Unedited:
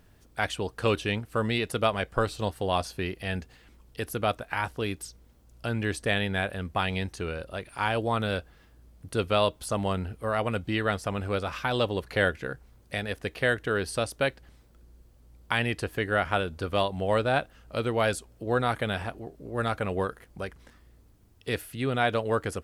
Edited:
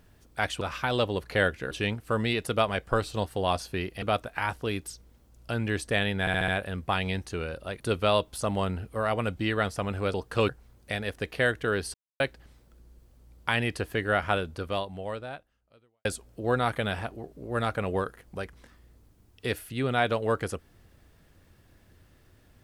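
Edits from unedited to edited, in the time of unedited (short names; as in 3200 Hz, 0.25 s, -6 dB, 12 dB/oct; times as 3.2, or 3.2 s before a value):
0.61–0.96 swap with 11.42–12.52
3.27–4.17 cut
6.35 stutter 0.07 s, 5 plays
7.67–9.08 cut
13.97–14.23 mute
16.41–18.08 fade out quadratic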